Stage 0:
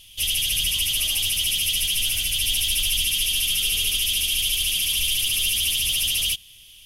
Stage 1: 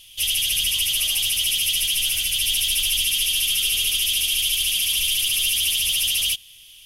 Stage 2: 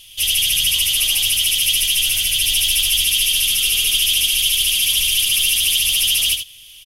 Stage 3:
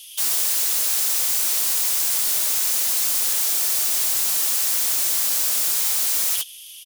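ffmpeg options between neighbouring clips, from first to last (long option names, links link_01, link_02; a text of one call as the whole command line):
ffmpeg -i in.wav -af "lowshelf=frequency=490:gain=-7,volume=1.5dB" out.wav
ffmpeg -i in.wav -af "aecho=1:1:77:0.422,volume=4dB" out.wav
ffmpeg -i in.wav -af "aeval=exprs='(mod(10*val(0)+1,2)-1)/10':channel_layout=same,bass=frequency=250:gain=-13,treble=frequency=4000:gain=10,volume=-5dB" out.wav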